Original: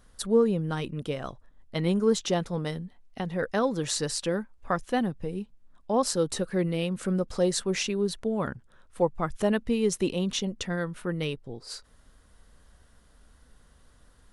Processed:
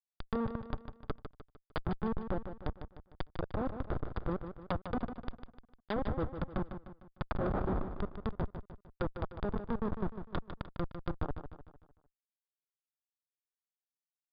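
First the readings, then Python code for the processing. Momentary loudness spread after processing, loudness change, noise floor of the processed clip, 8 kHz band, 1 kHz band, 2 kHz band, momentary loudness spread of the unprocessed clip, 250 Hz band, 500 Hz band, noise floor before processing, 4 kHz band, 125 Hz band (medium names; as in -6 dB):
13 LU, -10.5 dB, under -85 dBFS, under -40 dB, -7.0 dB, -11.0 dB, 12 LU, -10.5 dB, -13.0 dB, -59 dBFS, -20.5 dB, -7.0 dB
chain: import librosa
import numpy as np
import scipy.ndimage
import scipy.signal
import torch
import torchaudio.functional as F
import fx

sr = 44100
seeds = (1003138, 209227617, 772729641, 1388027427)

p1 = fx.spec_paint(x, sr, seeds[0], shape='noise', start_s=7.3, length_s=0.49, low_hz=610.0, high_hz=2400.0, level_db=-28.0)
p2 = fx.hum_notches(p1, sr, base_hz=50, count=5)
p3 = fx.dynamic_eq(p2, sr, hz=130.0, q=7.2, threshold_db=-55.0, ratio=4.0, max_db=-5)
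p4 = fx.rider(p3, sr, range_db=4, speed_s=0.5)
p5 = p3 + (p4 * librosa.db_to_amplitude(-0.5))
p6 = fx.schmitt(p5, sr, flips_db=-15.5)
p7 = fx.env_lowpass_down(p6, sr, base_hz=820.0, full_db=-24.5)
p8 = scipy.signal.sosfilt(scipy.signal.cheby1(6, 9, 4900.0, 'lowpass', fs=sr, output='sos'), p7)
p9 = p8 + fx.echo_feedback(p8, sr, ms=151, feedback_pct=45, wet_db=-9.0, dry=0)
y = p9 * librosa.db_to_amplitude(1.0)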